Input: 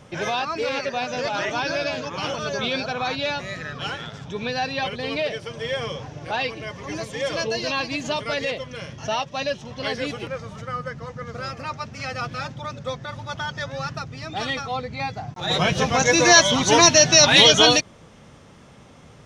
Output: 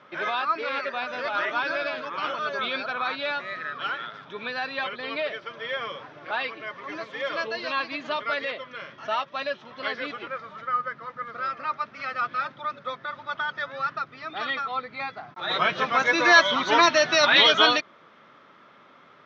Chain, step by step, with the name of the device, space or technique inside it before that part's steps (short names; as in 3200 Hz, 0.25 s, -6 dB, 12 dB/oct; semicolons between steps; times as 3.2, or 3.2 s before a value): phone earpiece (speaker cabinet 420–3600 Hz, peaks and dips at 480 Hz -7 dB, 780 Hz -7 dB, 1300 Hz +7 dB, 2800 Hz -6 dB)